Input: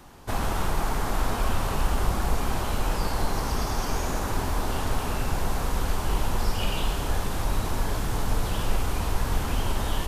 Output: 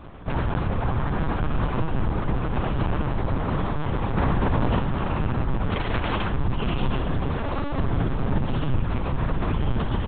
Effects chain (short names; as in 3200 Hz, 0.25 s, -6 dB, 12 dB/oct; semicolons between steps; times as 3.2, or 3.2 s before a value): 7.33–7.79 HPF 74 Hz 24 dB/oct; bell 140 Hz +4 dB 1 oct; limiter -22.5 dBFS, peak gain reduction 11.5 dB; 5.7–6.32 wrapped overs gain 24.5 dB; ring modulator 130 Hz; air absorption 210 m; echo 81 ms -9.5 dB; FDN reverb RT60 0.3 s, low-frequency decay 1.5×, high-frequency decay 0.45×, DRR 12 dB; LPC vocoder at 8 kHz pitch kept; 4.17–4.79 fast leveller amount 100%; gain +9 dB